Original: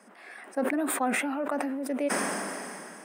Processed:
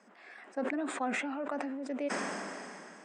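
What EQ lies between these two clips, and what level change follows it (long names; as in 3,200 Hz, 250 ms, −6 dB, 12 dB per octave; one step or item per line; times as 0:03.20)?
elliptic low-pass filter 7,600 Hz, stop band 50 dB
−5.0 dB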